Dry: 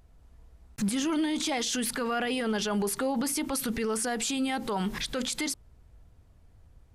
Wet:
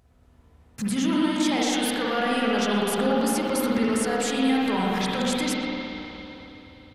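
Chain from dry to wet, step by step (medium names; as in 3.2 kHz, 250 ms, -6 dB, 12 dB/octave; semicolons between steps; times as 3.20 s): high-pass 60 Hz; speakerphone echo 120 ms, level -10 dB; spring tank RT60 3.5 s, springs 53/57 ms, chirp 30 ms, DRR -5 dB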